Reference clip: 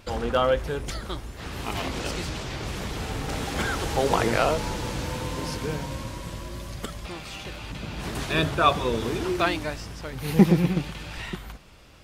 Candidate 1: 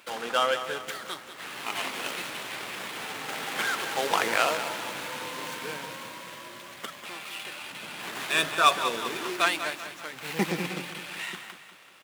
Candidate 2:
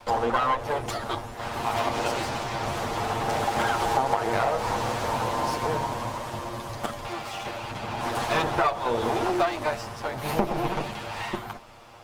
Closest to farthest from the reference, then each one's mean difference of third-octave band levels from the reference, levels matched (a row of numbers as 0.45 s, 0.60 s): 2, 1; 4.0 dB, 7.0 dB